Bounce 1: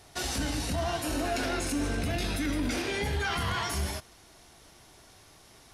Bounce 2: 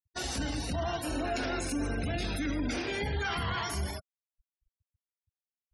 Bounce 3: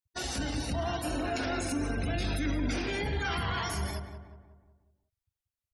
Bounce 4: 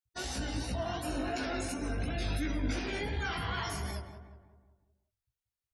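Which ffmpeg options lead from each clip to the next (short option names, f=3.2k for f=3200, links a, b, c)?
-af "afftfilt=real='re*gte(hypot(re,im),0.0141)':imag='im*gte(hypot(re,im),0.0141)':win_size=1024:overlap=0.75,volume=-2dB"
-filter_complex "[0:a]asplit=2[a][b];[b]adelay=183,lowpass=f=1.7k:p=1,volume=-8dB,asplit=2[c][d];[d]adelay=183,lowpass=f=1.7k:p=1,volume=0.49,asplit=2[e][f];[f]adelay=183,lowpass=f=1.7k:p=1,volume=0.49,asplit=2[g][h];[h]adelay=183,lowpass=f=1.7k:p=1,volume=0.49,asplit=2[i][j];[j]adelay=183,lowpass=f=1.7k:p=1,volume=0.49,asplit=2[k][l];[l]adelay=183,lowpass=f=1.7k:p=1,volume=0.49[m];[a][c][e][g][i][k][m]amix=inputs=7:normalize=0"
-af "flanger=delay=15.5:depth=4:speed=2.8"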